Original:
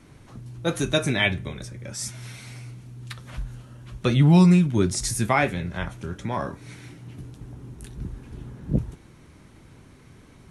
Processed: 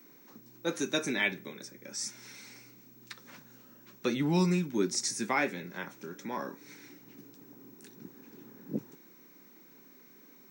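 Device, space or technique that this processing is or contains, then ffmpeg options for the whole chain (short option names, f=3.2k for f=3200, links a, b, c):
old television with a line whistle: -af "highpass=f=220:w=0.5412,highpass=f=220:w=1.3066,equalizer=f=670:t=q:w=4:g=-9,equalizer=f=1.2k:t=q:w=4:g=-4,equalizer=f=3.1k:t=q:w=4:g=-7,equalizer=f=5.7k:t=q:w=4:g=5,lowpass=f=8.3k:w=0.5412,lowpass=f=8.3k:w=1.3066,aeval=exprs='val(0)+0.00282*sin(2*PI*15734*n/s)':c=same,volume=-5dB"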